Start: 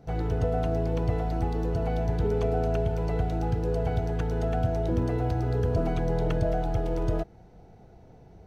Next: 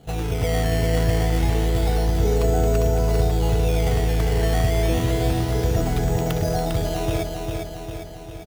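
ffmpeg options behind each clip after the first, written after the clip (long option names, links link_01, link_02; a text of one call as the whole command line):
ffmpeg -i in.wav -filter_complex "[0:a]highshelf=frequency=3700:gain=11.5,acrusher=samples=12:mix=1:aa=0.000001:lfo=1:lforange=12:lforate=0.29,asplit=2[link_01][link_02];[link_02]aecho=0:1:401|802|1203|1604|2005|2406|2807|3208:0.596|0.345|0.2|0.116|0.0674|0.0391|0.0227|0.0132[link_03];[link_01][link_03]amix=inputs=2:normalize=0,volume=3dB" out.wav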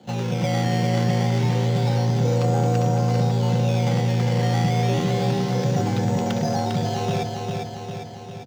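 ffmpeg -i in.wav -af "highshelf=frequency=7700:width_type=q:width=1.5:gain=-10,asoftclip=type=tanh:threshold=-12dB,afreqshift=65" out.wav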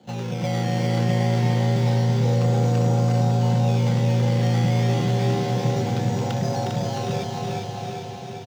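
ffmpeg -i in.wav -af "aecho=1:1:360|666|926.1|1147|1335:0.631|0.398|0.251|0.158|0.1,volume=-3.5dB" out.wav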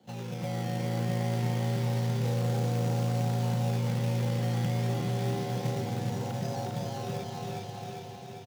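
ffmpeg -i in.wav -filter_complex "[0:a]acrossover=split=1800[link_01][link_02];[link_01]acrusher=bits=4:mode=log:mix=0:aa=0.000001[link_03];[link_02]alimiter=level_in=6.5dB:limit=-24dB:level=0:latency=1,volume=-6.5dB[link_04];[link_03][link_04]amix=inputs=2:normalize=0,volume=-9dB" out.wav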